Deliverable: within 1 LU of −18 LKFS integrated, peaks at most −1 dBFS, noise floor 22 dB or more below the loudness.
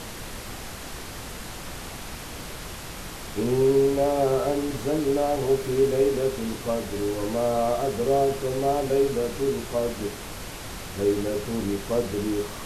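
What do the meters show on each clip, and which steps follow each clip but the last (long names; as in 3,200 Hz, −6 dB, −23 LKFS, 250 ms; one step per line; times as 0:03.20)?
background noise floor −38 dBFS; target noise floor −47 dBFS; integrated loudness −25.0 LKFS; sample peak −10.5 dBFS; target loudness −18.0 LKFS
→ noise reduction from a noise print 9 dB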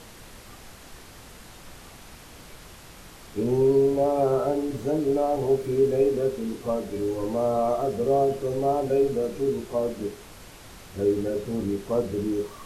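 background noise floor −47 dBFS; integrated loudness −25.0 LKFS; sample peak −11.0 dBFS; target loudness −18.0 LKFS
→ level +7 dB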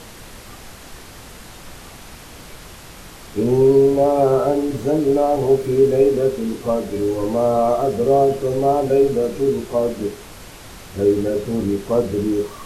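integrated loudness −18.0 LKFS; sample peak −4.0 dBFS; background noise floor −40 dBFS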